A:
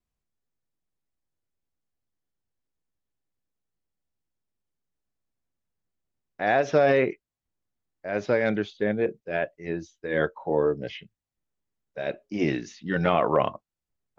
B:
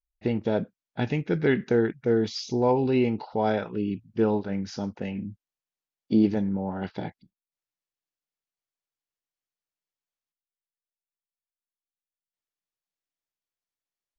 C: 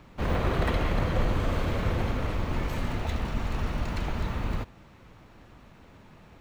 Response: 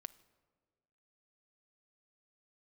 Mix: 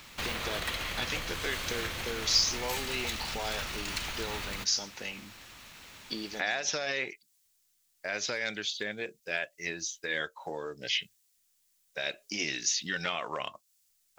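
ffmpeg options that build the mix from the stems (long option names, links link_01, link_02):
-filter_complex "[0:a]adynamicequalizer=threshold=0.00562:dfrequency=4000:dqfactor=0.7:tfrequency=4000:tqfactor=0.7:attack=5:release=100:ratio=0.375:range=3.5:mode=boostabove:tftype=highshelf,volume=3dB,asplit=2[link_01][link_02];[1:a]bass=frequency=250:gain=-12,treble=frequency=4000:gain=14,acompressor=threshold=-40dB:ratio=2,volume=2.5dB[link_03];[2:a]volume=1dB[link_04];[link_02]apad=whole_len=625599[link_05];[link_03][link_05]sidechaincompress=threshold=-29dB:ratio=8:attack=16:release=1260[link_06];[link_01][link_04]amix=inputs=2:normalize=0,highshelf=frequency=2500:gain=9.5,acompressor=threshold=-31dB:ratio=4,volume=0dB[link_07];[link_06][link_07]amix=inputs=2:normalize=0,tiltshelf=frequency=1200:gain=-9"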